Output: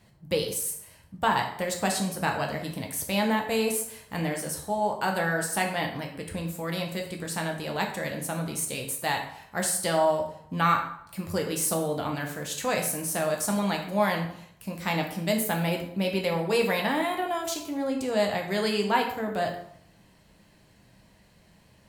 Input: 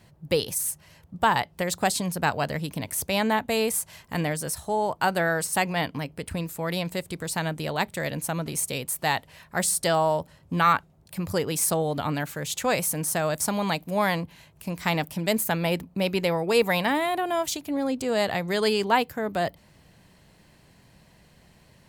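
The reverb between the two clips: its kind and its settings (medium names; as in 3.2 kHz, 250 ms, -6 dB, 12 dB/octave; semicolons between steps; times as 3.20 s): plate-style reverb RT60 0.68 s, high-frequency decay 0.75×, DRR 1.5 dB; trim -4.5 dB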